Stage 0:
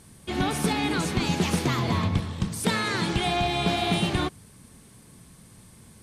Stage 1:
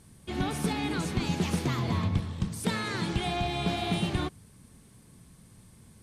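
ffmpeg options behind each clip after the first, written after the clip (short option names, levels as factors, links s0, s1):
-af "lowshelf=f=240:g=5,volume=0.473"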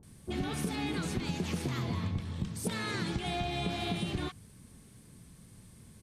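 -filter_complex "[0:a]acrossover=split=930[s0][s1];[s1]adelay=30[s2];[s0][s2]amix=inputs=2:normalize=0,acompressor=threshold=0.0316:ratio=6"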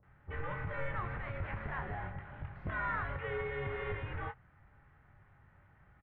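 -filter_complex "[0:a]tiltshelf=f=1100:g=-7.5,highpass=f=150:t=q:w=0.5412,highpass=f=150:t=q:w=1.307,lowpass=f=2100:t=q:w=0.5176,lowpass=f=2100:t=q:w=0.7071,lowpass=f=2100:t=q:w=1.932,afreqshift=-280,asplit=2[s0][s1];[s1]adelay=22,volume=0.355[s2];[s0][s2]amix=inputs=2:normalize=0,volume=1.19"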